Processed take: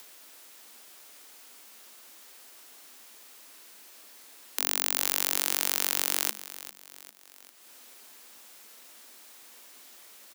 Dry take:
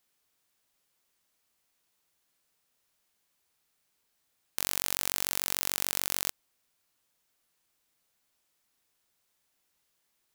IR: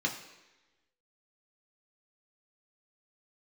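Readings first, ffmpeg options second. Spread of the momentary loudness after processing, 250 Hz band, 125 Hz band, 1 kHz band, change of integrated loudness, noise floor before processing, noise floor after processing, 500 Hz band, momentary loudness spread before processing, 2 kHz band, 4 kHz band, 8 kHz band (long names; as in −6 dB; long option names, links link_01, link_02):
15 LU, +2.5 dB, below −10 dB, +3.5 dB, +3.0 dB, −77 dBFS, −53 dBFS, +4.0 dB, 5 LU, +3.5 dB, +4.0 dB, +4.0 dB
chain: -af "aecho=1:1:399|798|1197:0.188|0.049|0.0127,acompressor=mode=upward:threshold=-37dB:ratio=2.5,afreqshift=210,volume=3.5dB"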